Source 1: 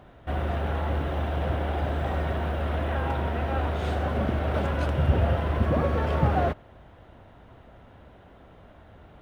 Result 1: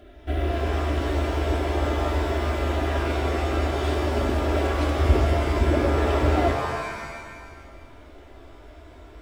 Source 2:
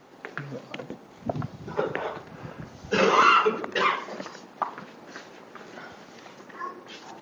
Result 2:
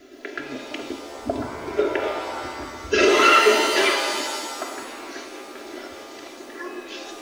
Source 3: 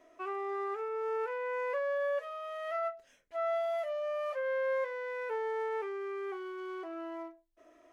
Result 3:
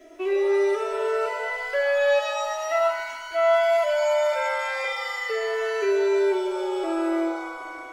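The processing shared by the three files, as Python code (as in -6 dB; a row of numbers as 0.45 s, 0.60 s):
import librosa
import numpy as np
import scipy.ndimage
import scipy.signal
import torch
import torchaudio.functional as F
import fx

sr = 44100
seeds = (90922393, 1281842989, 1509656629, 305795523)

y = fx.fixed_phaser(x, sr, hz=390.0, stages=4)
y = y + 0.9 * np.pad(y, (int(3.0 * sr / 1000.0), 0))[:len(y)]
y = fx.rev_shimmer(y, sr, seeds[0], rt60_s=1.5, semitones=7, shimmer_db=-2, drr_db=5.0)
y = y * 10.0 ** (-24 / 20.0) / np.sqrt(np.mean(np.square(y)))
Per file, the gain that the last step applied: +2.5 dB, +5.0 dB, +11.5 dB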